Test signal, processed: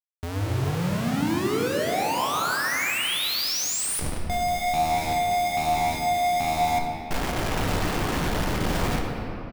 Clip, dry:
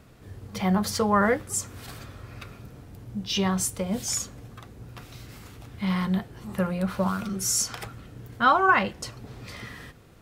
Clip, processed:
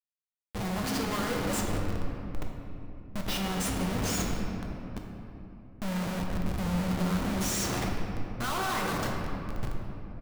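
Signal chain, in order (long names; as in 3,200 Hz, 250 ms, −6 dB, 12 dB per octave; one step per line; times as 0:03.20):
on a send: echo with shifted repeats 186 ms, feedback 40%, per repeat +78 Hz, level −13.5 dB
on the sum: pitch vibrato 1.1 Hz 11 cents
comparator with hysteresis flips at −31 dBFS
rectangular room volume 160 cubic metres, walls hard, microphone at 0.44 metres
level −4.5 dB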